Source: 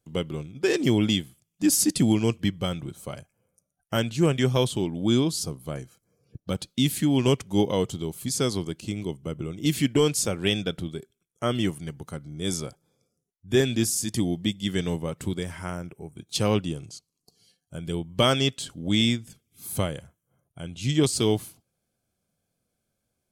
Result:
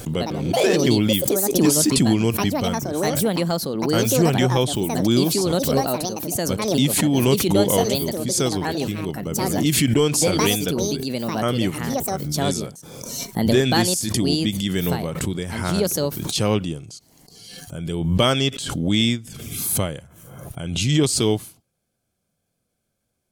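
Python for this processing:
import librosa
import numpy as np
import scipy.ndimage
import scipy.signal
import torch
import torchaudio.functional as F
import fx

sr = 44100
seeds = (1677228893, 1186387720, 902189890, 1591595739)

y = fx.echo_pitch(x, sr, ms=89, semitones=5, count=2, db_per_echo=-3.0)
y = fx.pre_swell(y, sr, db_per_s=39.0)
y = F.gain(torch.from_numpy(y), 2.5).numpy()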